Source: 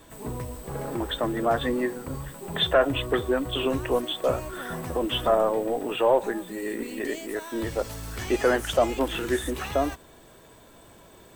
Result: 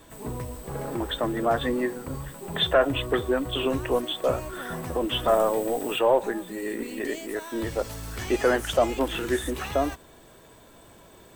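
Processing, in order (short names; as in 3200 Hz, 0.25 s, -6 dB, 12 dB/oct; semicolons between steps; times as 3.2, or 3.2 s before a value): 5.28–5.99 high shelf 3800 Hz +10 dB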